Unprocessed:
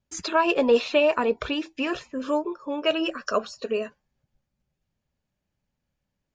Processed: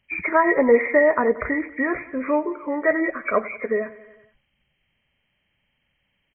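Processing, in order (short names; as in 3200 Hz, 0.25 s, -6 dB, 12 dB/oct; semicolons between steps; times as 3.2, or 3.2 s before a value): nonlinear frequency compression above 1700 Hz 4:1; feedback echo 91 ms, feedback 60%, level -18.5 dB; mismatched tape noise reduction encoder only; gain +3.5 dB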